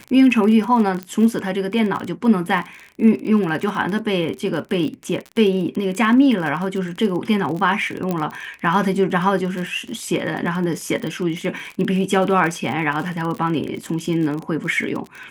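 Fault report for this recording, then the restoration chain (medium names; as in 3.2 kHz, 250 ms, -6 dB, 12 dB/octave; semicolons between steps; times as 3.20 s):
crackle 37 per s -25 dBFS
1.03 s: pop -14 dBFS
8.11 s: pop -10 dBFS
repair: de-click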